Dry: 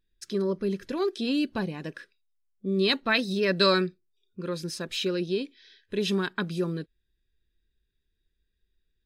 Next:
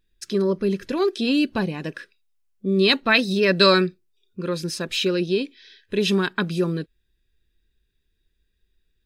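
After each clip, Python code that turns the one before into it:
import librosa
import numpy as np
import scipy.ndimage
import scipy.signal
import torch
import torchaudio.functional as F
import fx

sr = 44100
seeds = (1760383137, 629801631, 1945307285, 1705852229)

y = fx.peak_eq(x, sr, hz=2600.0, db=3.0, octaves=0.24)
y = y * librosa.db_to_amplitude(6.0)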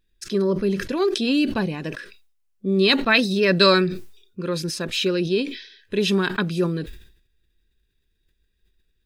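y = fx.sustainer(x, sr, db_per_s=88.0)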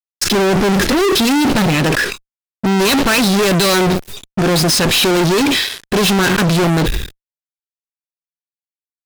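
y = fx.fuzz(x, sr, gain_db=42.0, gate_db=-49.0)
y = y * librosa.db_to_amplitude(1.0)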